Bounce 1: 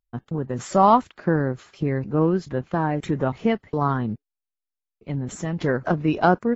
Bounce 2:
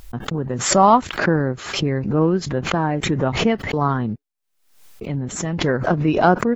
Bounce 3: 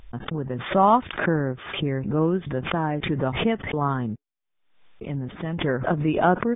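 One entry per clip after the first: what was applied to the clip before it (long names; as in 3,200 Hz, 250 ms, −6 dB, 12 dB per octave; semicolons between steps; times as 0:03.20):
background raised ahead of every attack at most 79 dB per second; level +2.5 dB
linear-phase brick-wall low-pass 3,700 Hz; level −4.5 dB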